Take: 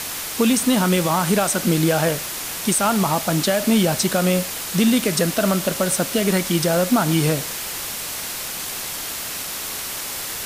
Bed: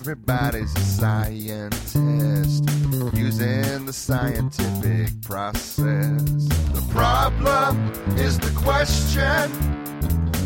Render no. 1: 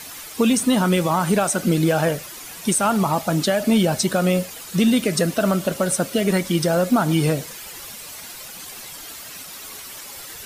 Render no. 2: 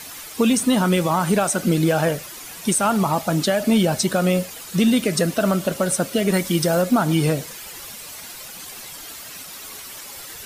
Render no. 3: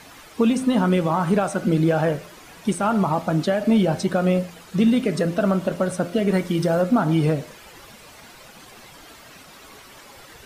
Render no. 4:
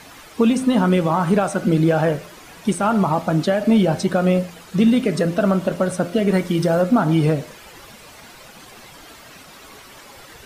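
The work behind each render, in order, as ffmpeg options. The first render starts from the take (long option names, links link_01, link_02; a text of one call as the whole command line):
ffmpeg -i in.wav -af "afftdn=noise_reduction=11:noise_floor=-29" out.wav
ffmpeg -i in.wav -filter_complex "[0:a]asettb=1/sr,asplit=3[link_01][link_02][link_03];[link_01]atrim=end=6.334[link_04];[link_02]atrim=start=6.33:end=6.82,asetpts=PTS-STARTPTS,afade=type=in:duration=0.004:curve=qsin,afade=type=out:start_time=0.486:duration=0.004:curve=qsin,highshelf=frequency=7800:gain=5.5[link_05];[link_03]atrim=start=6.816[link_06];[link_04][link_05]acrossfade=duration=0.004:curve1=hsin:curve2=qsin[link_07];[link_07][link_06]acrossfade=duration=0.004:curve1=qsin:curve2=hsin" out.wav
ffmpeg -i in.wav -af "lowpass=frequency=1600:poles=1,bandreject=frequency=86.55:width_type=h:width=4,bandreject=frequency=173.1:width_type=h:width=4,bandreject=frequency=259.65:width_type=h:width=4,bandreject=frequency=346.2:width_type=h:width=4,bandreject=frequency=432.75:width_type=h:width=4,bandreject=frequency=519.3:width_type=h:width=4,bandreject=frequency=605.85:width_type=h:width=4,bandreject=frequency=692.4:width_type=h:width=4,bandreject=frequency=778.95:width_type=h:width=4,bandreject=frequency=865.5:width_type=h:width=4,bandreject=frequency=952.05:width_type=h:width=4,bandreject=frequency=1038.6:width_type=h:width=4,bandreject=frequency=1125.15:width_type=h:width=4,bandreject=frequency=1211.7:width_type=h:width=4,bandreject=frequency=1298.25:width_type=h:width=4,bandreject=frequency=1384.8:width_type=h:width=4,bandreject=frequency=1471.35:width_type=h:width=4,bandreject=frequency=1557.9:width_type=h:width=4,bandreject=frequency=1644.45:width_type=h:width=4,bandreject=frequency=1731:width_type=h:width=4,bandreject=frequency=1817.55:width_type=h:width=4,bandreject=frequency=1904.1:width_type=h:width=4,bandreject=frequency=1990.65:width_type=h:width=4,bandreject=frequency=2077.2:width_type=h:width=4,bandreject=frequency=2163.75:width_type=h:width=4,bandreject=frequency=2250.3:width_type=h:width=4,bandreject=frequency=2336.85:width_type=h:width=4,bandreject=frequency=2423.4:width_type=h:width=4,bandreject=frequency=2509.95:width_type=h:width=4,bandreject=frequency=2596.5:width_type=h:width=4,bandreject=frequency=2683.05:width_type=h:width=4,bandreject=frequency=2769.6:width_type=h:width=4,bandreject=frequency=2856.15:width_type=h:width=4,bandreject=frequency=2942.7:width_type=h:width=4,bandreject=frequency=3029.25:width_type=h:width=4,bandreject=frequency=3115.8:width_type=h:width=4,bandreject=frequency=3202.35:width_type=h:width=4" out.wav
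ffmpeg -i in.wav -af "volume=2.5dB" out.wav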